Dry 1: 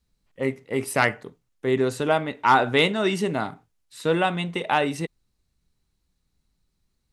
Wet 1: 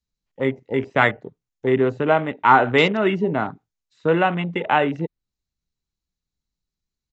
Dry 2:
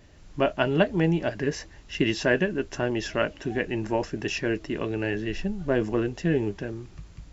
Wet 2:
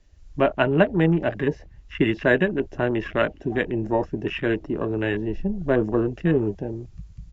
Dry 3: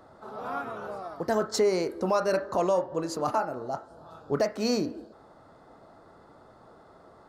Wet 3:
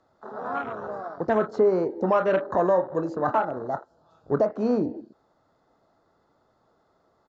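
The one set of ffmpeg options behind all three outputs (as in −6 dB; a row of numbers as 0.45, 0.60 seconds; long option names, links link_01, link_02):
-filter_complex "[0:a]acrossover=split=430|3200[link_01][link_02][link_03];[link_03]acompressor=threshold=-57dB:ratio=5[link_04];[link_01][link_02][link_04]amix=inputs=3:normalize=0,afwtdn=0.0158,aresample=16000,aresample=44100,aemphasis=mode=production:type=cd,volume=4dB"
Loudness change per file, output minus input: +3.5, +3.5, +3.5 LU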